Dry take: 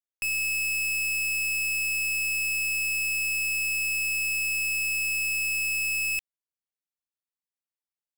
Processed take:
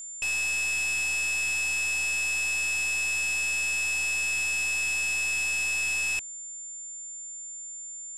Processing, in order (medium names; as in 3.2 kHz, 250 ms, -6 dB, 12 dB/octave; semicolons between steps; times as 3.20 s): CVSD coder 64 kbps; whistle 7.2 kHz -37 dBFS